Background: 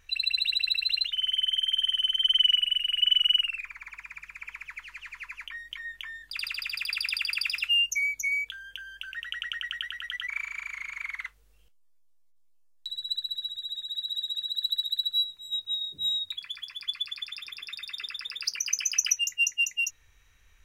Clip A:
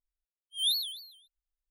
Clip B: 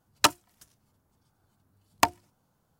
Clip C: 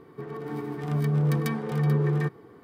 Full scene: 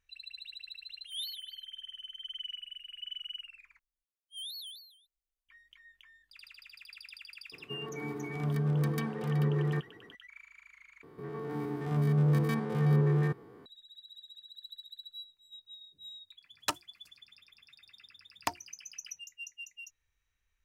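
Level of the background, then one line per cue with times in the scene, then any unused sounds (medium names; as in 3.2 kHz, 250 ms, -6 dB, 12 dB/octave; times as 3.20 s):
background -19.5 dB
0.52 s: add A -11 dB
3.79 s: replace with A -5 dB + compression, threshold -36 dBFS
7.52 s: add C -5.5 dB
11.03 s: replace with C -2 dB + spectrogram pixelated in time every 50 ms
16.44 s: add B -11.5 dB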